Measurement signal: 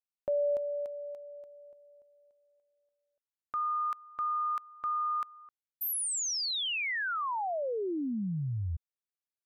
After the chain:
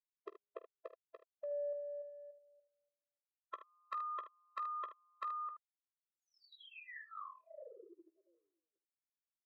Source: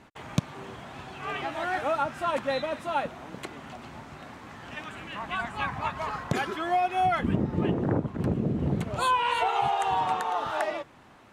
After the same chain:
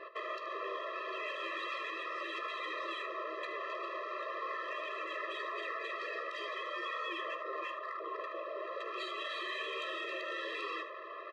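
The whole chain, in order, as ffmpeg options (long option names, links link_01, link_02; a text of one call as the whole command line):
ffmpeg -i in.wav -filter_complex "[0:a]highpass=440,afftfilt=real='re*lt(hypot(re,im),0.0398)':imag='im*lt(hypot(re,im),0.0398)':win_size=1024:overlap=0.75,lowpass=frequency=4800:width=0.5412,lowpass=frequency=4800:width=1.3066,anlmdn=0.0001,highshelf=frequency=2200:gain=-9.5,alimiter=level_in=14dB:limit=-24dB:level=0:latency=1:release=193,volume=-14dB,acompressor=threshold=-52dB:ratio=6:attack=47:release=44:knee=6:detection=rms,asplit=2[link_01][link_02];[link_02]highpass=frequency=720:poles=1,volume=9dB,asoftclip=type=tanh:threshold=-39.5dB[link_03];[link_01][link_03]amix=inputs=2:normalize=0,lowpass=frequency=3700:poles=1,volume=-6dB,aecho=1:1:15|48|76:0.251|0.15|0.237,afftfilt=real='re*eq(mod(floor(b*sr/1024/340),2),1)':imag='im*eq(mod(floor(b*sr/1024/340),2),1)':win_size=1024:overlap=0.75,volume=13dB" out.wav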